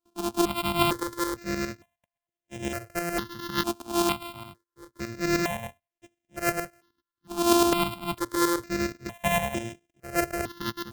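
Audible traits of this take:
a buzz of ramps at a fixed pitch in blocks of 128 samples
tremolo saw up 9.7 Hz, depth 65%
notches that jump at a steady rate 2.2 Hz 520–4,400 Hz

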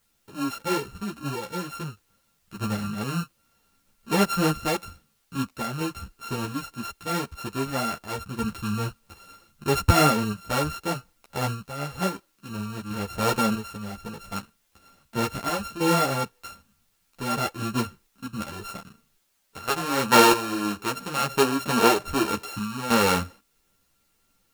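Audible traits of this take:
a buzz of ramps at a fixed pitch in blocks of 32 samples
sample-and-hold tremolo 3.1 Hz, depth 70%
a quantiser's noise floor 12 bits, dither triangular
a shimmering, thickened sound

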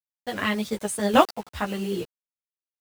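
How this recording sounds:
a quantiser's noise floor 6 bits, dither none
chopped level 0.88 Hz, depth 65%, duty 20%
a shimmering, thickened sound

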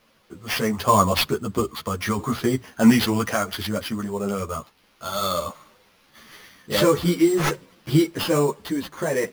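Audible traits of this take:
a quantiser's noise floor 10 bits, dither triangular
sample-and-hold tremolo 2.3 Hz
aliases and images of a low sample rate 7,900 Hz, jitter 0%
a shimmering, thickened sound

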